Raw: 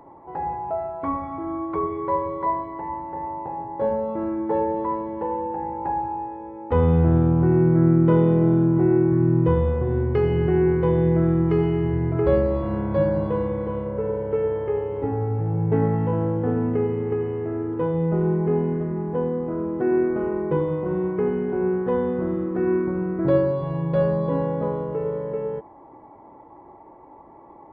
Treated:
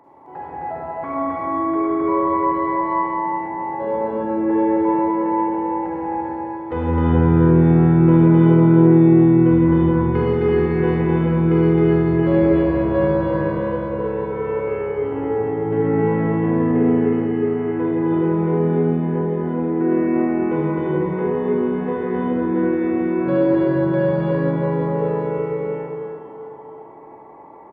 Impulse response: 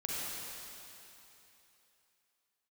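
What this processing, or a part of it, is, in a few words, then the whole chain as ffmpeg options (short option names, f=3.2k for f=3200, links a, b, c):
stadium PA: -filter_complex "[0:a]highpass=f=160:p=1,equalizer=f=2.1k:t=o:w=1.2:g=4,aecho=1:1:218.7|262.4:0.282|0.794[a];[1:a]atrim=start_sample=2205[b];[a][b]afir=irnorm=-1:irlink=0,volume=-1.5dB"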